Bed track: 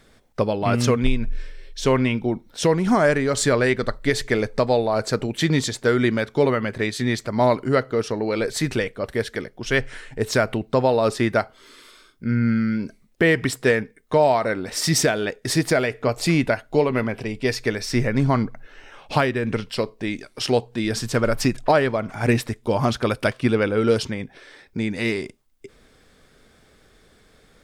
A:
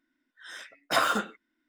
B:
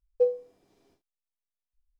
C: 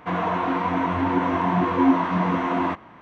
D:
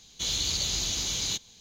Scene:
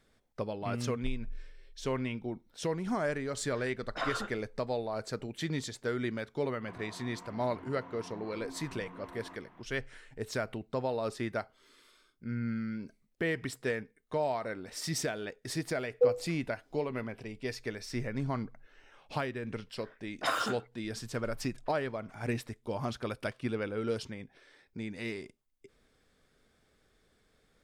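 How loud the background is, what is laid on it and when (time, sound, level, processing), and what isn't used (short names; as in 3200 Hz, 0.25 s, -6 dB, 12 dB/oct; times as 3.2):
bed track -14.5 dB
3.05 add A -9.5 dB + air absorption 130 m
6.61 add C -13 dB + compressor 2.5:1, threshold -40 dBFS
15.81 add B -6 dB + comb 4 ms
19.31 add A -6.5 dB + low-pass opened by the level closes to 630 Hz, open at -23 dBFS
not used: D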